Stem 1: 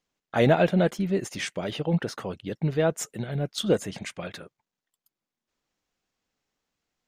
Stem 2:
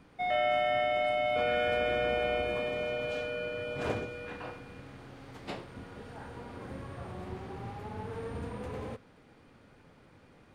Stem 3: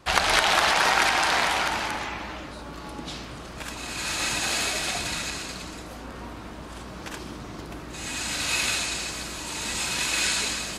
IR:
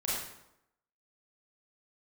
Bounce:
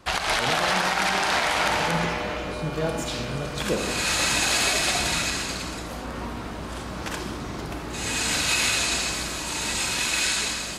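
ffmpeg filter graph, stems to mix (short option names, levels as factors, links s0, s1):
-filter_complex "[0:a]volume=0.266,asplit=2[s0][s1];[s1]volume=0.501[s2];[1:a]volume=0.422[s3];[2:a]volume=0.891,asplit=2[s4][s5];[s5]volume=0.266[s6];[3:a]atrim=start_sample=2205[s7];[s2][s6]amix=inputs=2:normalize=0[s8];[s8][s7]afir=irnorm=-1:irlink=0[s9];[s0][s3][s4][s9]amix=inputs=4:normalize=0,dynaudnorm=f=120:g=21:m=1.58,alimiter=limit=0.266:level=0:latency=1:release=203"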